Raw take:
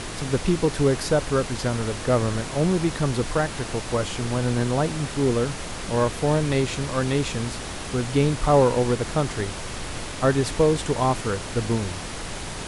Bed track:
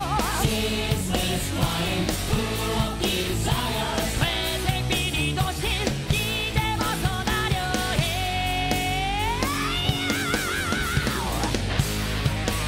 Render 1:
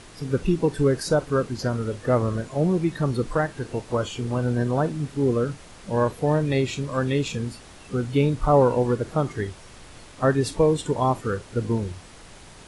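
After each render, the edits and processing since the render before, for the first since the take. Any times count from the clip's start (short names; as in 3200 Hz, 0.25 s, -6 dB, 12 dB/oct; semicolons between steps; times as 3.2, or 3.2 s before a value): noise print and reduce 13 dB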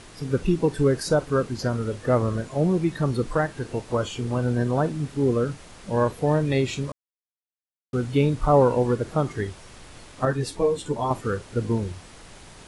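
6.92–7.93 mute; 10.25–11.11 ensemble effect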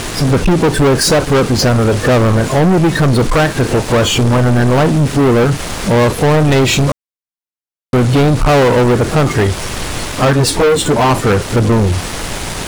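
in parallel at +1 dB: compressor, threshold -30 dBFS, peak gain reduction 16 dB; on the sum: sample leveller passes 5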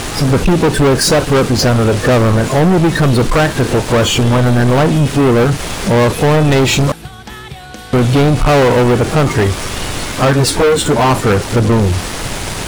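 add bed track -6 dB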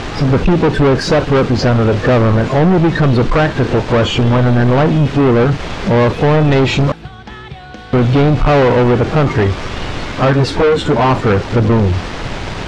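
air absorption 170 m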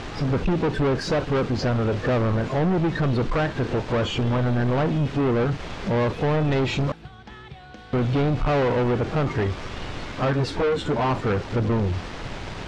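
gain -11 dB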